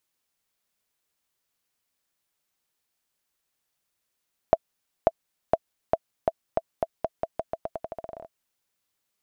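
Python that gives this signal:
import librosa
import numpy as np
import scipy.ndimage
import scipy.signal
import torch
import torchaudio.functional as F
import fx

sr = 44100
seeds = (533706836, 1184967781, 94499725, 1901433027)

y = fx.bouncing_ball(sr, first_gap_s=0.54, ratio=0.86, hz=658.0, decay_ms=42.0, level_db=-4.5)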